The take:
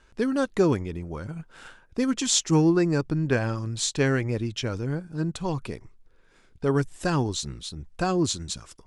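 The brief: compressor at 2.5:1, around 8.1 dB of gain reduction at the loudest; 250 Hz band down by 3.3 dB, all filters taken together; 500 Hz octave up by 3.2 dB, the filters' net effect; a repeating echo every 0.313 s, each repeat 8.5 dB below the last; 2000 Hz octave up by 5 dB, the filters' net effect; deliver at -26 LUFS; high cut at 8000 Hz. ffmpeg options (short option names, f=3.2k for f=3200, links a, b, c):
-af "lowpass=8k,equalizer=f=250:t=o:g=-8.5,equalizer=f=500:t=o:g=7,equalizer=f=2k:t=o:g=6.5,acompressor=threshold=-28dB:ratio=2.5,aecho=1:1:313|626|939|1252:0.376|0.143|0.0543|0.0206,volume=5dB"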